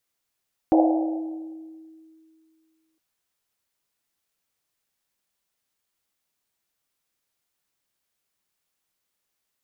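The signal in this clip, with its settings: Risset drum length 2.26 s, pitch 320 Hz, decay 2.42 s, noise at 670 Hz, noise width 300 Hz, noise 30%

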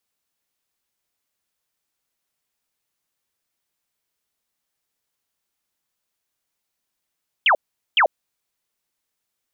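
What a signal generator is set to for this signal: burst of laser zaps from 3.4 kHz, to 530 Hz, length 0.09 s sine, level -12 dB, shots 2, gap 0.42 s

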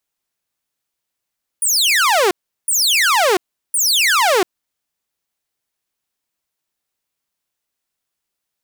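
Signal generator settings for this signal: burst of laser zaps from 10 kHz, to 340 Hz, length 0.69 s saw, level -9 dB, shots 3, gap 0.37 s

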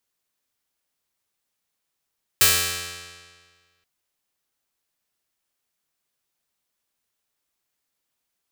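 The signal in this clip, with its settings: plucked string F2, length 1.43 s, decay 1.68 s, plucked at 0.35, bright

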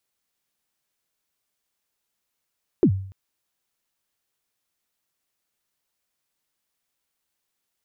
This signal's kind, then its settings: kick drum length 0.29 s, from 420 Hz, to 96 Hz, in 77 ms, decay 0.56 s, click off, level -10 dB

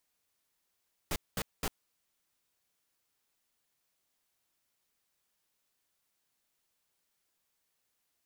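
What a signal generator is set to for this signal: noise bursts pink, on 0.05 s, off 0.21 s, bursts 3, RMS -33 dBFS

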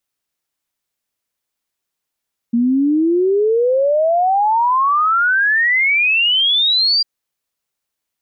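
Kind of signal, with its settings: log sweep 230 Hz -> 4.8 kHz 4.50 s -11.5 dBFS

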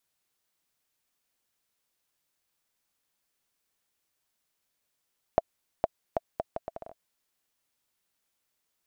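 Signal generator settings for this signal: bouncing ball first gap 0.46 s, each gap 0.71, 662 Hz, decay 29 ms -8 dBFS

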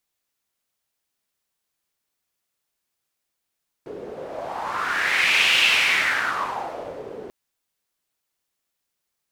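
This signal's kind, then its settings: wind-like swept noise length 3.44 s, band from 420 Hz, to 2.7 kHz, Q 4.1, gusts 1, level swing 18.5 dB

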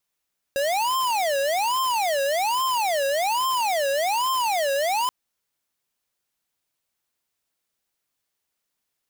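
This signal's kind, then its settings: siren wail 548–1050 Hz 1.2 per s square -23 dBFS 4.53 s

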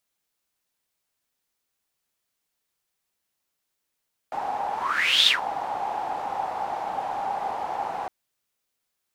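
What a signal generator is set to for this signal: whoosh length 3.76 s, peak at 0.95 s, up 0.57 s, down 0.15 s, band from 810 Hz, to 3.6 kHz, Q 9.3, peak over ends 11.5 dB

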